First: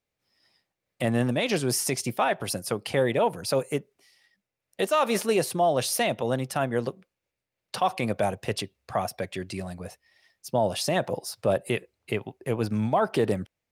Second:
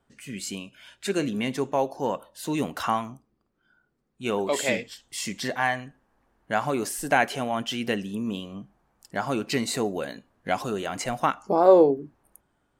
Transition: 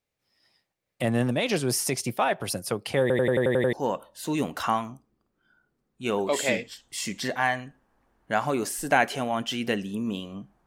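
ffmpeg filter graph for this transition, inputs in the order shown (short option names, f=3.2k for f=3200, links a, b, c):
-filter_complex "[0:a]apad=whole_dur=10.66,atrim=end=10.66,asplit=8[a][b][c][d][e][f][g][h];[a]atrim=end=3.102[i];[b]atrim=start=3.008:end=3.102[j];[c]atrim=start=3.008:end=3.102[k];[d]atrim=start=3.008:end=3.102[l];[e]atrim=start=3.008:end=3.102[m];[f]atrim=start=3.008:end=3.102[n];[g]atrim=start=3.008:end=3.102[o];[h]atrim=start=3.008:end=3.102[p];[1:a]atrim=start=1.928:end=8.86[q];[i][j]acrossfade=d=0.004:c1=hsin:c2=hsin[r];[r][k]acrossfade=d=0.004:c1=hsin:c2=hsin[s];[s][l]acrossfade=d=0.004:c1=hsin:c2=hsin[t];[t][m]acrossfade=d=0.004:c1=hsin:c2=hsin[u];[u][n]acrossfade=d=0.004:c1=hsin:c2=hsin[v];[v][o]acrossfade=d=0.004:c1=hsin:c2=hsin[w];[w][p]acrossfade=d=0.004:c1=hsin:c2=hsin[x];[x][q]acrossfade=d=0.004:c1=hsin:c2=hsin"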